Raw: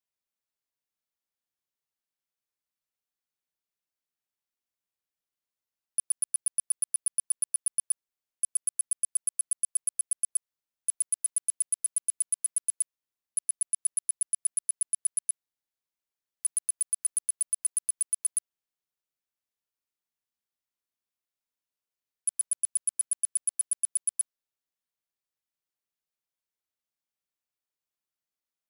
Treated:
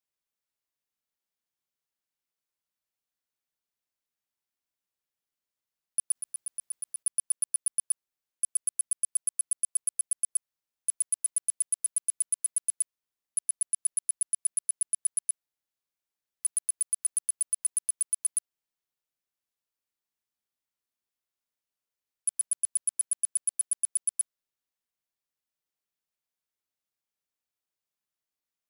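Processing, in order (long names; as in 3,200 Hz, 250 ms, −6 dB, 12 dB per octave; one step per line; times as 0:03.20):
0:06.15–0:07.03: compressor whose output falls as the input rises −31 dBFS, ratio −0.5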